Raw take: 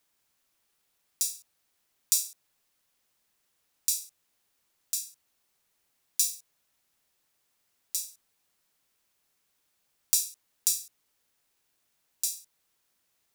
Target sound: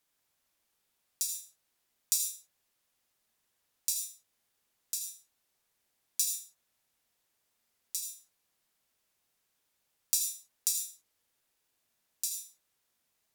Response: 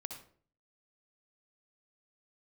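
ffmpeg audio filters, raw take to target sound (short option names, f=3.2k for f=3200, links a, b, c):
-filter_complex "[1:a]atrim=start_sample=2205,afade=t=out:st=0.16:d=0.01,atrim=end_sample=7497,asetrate=34398,aresample=44100[a];[0:a][a]afir=irnorm=-1:irlink=0,volume=-1.5dB"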